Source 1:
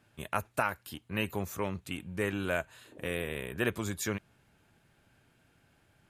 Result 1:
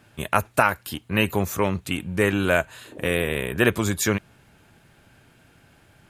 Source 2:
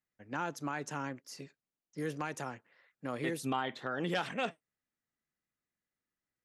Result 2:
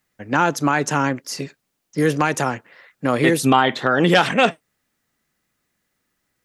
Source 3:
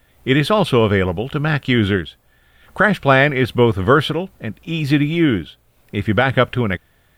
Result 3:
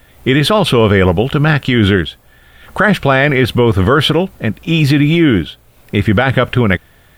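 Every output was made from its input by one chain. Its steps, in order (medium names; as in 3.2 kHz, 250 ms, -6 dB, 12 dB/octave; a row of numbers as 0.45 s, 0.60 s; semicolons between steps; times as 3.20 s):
peak limiter -11.5 dBFS; peak normalisation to -1.5 dBFS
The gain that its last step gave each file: +11.5 dB, +19.0 dB, +10.0 dB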